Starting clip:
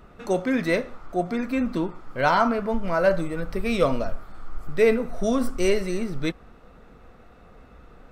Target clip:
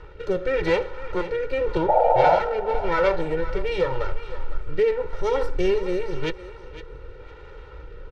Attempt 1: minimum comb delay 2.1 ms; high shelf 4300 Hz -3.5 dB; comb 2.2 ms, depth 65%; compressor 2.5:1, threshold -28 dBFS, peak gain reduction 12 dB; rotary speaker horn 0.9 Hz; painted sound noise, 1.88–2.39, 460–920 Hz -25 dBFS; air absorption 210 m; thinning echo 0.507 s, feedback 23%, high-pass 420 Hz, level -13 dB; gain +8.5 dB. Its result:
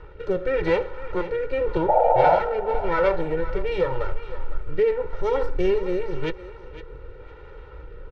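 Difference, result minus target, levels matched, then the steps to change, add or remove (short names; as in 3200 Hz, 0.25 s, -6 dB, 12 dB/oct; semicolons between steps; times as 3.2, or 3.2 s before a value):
8000 Hz band -8.0 dB
change: high shelf 4300 Hz +8.5 dB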